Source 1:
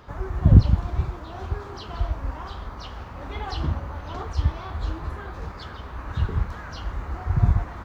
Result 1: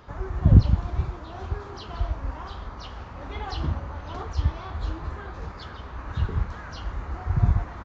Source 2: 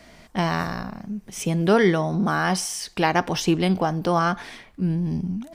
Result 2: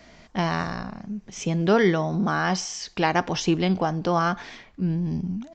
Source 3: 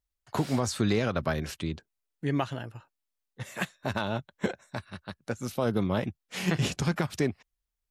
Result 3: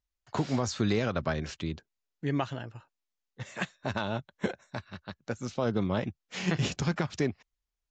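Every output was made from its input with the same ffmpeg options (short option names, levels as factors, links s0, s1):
-af "aresample=16000,aresample=44100,volume=0.841"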